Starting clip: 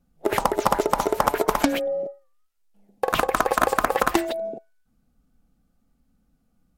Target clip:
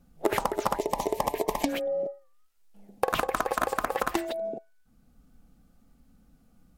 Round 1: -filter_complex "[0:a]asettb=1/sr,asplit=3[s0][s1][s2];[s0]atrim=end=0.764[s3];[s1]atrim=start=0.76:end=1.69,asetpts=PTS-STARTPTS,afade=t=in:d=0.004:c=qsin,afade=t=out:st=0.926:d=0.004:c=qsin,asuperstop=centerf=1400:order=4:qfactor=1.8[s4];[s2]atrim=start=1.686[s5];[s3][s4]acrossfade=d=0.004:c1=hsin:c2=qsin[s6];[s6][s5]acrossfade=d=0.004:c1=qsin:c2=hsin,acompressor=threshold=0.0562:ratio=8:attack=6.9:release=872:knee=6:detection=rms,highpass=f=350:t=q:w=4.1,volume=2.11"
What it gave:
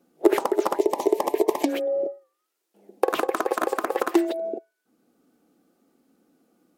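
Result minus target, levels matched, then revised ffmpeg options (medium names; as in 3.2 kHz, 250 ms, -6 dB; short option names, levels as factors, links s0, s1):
250 Hz band +3.5 dB
-filter_complex "[0:a]asettb=1/sr,asplit=3[s0][s1][s2];[s0]atrim=end=0.764[s3];[s1]atrim=start=0.76:end=1.69,asetpts=PTS-STARTPTS,afade=t=in:d=0.004:c=qsin,afade=t=out:st=0.926:d=0.004:c=qsin,asuperstop=centerf=1400:order=4:qfactor=1.8[s4];[s2]atrim=start=1.686[s5];[s3][s4]acrossfade=d=0.004:c1=hsin:c2=qsin[s6];[s6][s5]acrossfade=d=0.004:c1=qsin:c2=hsin,acompressor=threshold=0.0562:ratio=8:attack=6.9:release=872:knee=6:detection=rms,volume=2.11"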